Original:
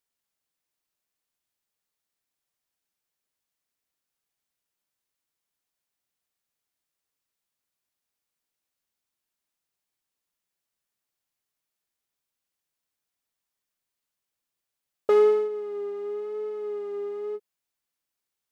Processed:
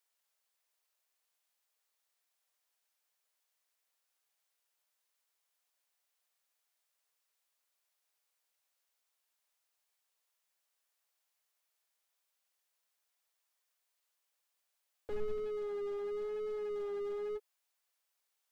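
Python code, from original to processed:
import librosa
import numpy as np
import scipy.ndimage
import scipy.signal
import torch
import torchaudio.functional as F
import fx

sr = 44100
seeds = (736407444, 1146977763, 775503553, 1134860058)

y = scipy.signal.sosfilt(scipy.signal.butter(4, 480.0, 'highpass', fs=sr, output='sos'), x)
y = fx.slew_limit(y, sr, full_power_hz=4.4)
y = y * 10.0 ** (2.5 / 20.0)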